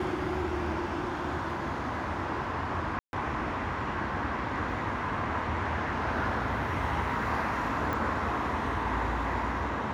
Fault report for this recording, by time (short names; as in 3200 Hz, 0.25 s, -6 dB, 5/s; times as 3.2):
2.99–3.13 gap 0.141 s
7.93 pop